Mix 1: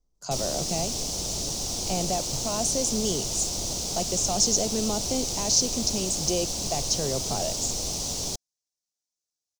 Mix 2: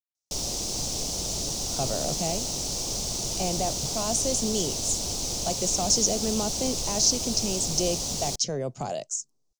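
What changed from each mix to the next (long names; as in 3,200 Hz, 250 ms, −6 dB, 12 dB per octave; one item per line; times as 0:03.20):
speech: entry +1.50 s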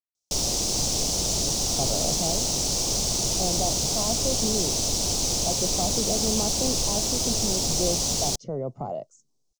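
speech: add Savitzky-Golay smoothing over 65 samples
background +5.0 dB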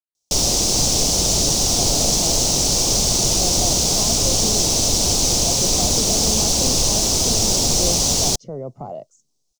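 background +7.5 dB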